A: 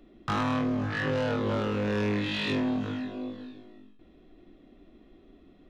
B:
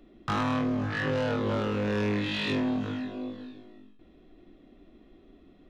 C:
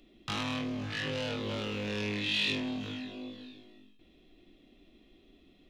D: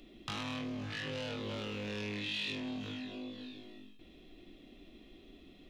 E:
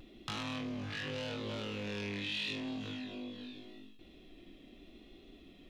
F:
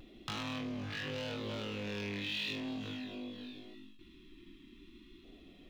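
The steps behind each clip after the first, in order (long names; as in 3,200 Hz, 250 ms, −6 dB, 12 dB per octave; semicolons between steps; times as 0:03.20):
no processing that can be heard
in parallel at −8.5 dB: soft clipping −34.5 dBFS, distortion −9 dB; on the sum: high shelf with overshoot 2,000 Hz +9 dB, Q 1.5; level −8.5 dB
downward compressor 2 to 1, threshold −50 dBFS, peak gain reduction 12.5 dB; level +4.5 dB
pitch vibrato 0.83 Hz 38 cents
running median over 3 samples; time-frequency box erased 0:03.74–0:05.24, 390–850 Hz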